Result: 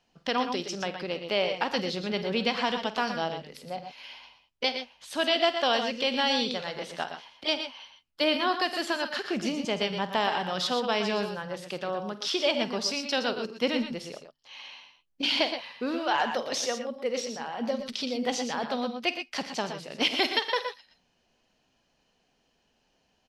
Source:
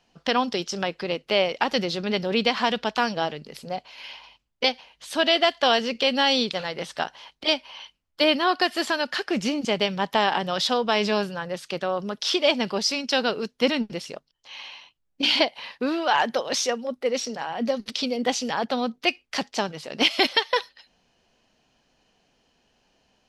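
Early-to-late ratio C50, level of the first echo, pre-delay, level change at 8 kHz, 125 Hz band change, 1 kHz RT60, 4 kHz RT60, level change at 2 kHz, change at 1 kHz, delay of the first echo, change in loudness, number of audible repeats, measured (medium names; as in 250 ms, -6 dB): no reverb, -14.5 dB, no reverb, -4.5 dB, -4.5 dB, no reverb, no reverb, -4.5 dB, -4.5 dB, 49 ms, -4.5 dB, 3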